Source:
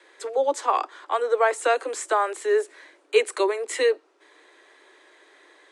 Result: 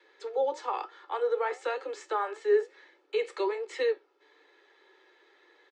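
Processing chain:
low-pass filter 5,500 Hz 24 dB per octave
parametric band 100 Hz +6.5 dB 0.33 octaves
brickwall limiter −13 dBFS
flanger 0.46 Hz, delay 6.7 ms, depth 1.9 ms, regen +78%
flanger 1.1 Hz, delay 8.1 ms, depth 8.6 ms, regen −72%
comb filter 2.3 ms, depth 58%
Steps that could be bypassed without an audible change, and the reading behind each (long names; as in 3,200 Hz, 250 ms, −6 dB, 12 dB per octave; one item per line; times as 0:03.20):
parametric band 100 Hz: nothing at its input below 250 Hz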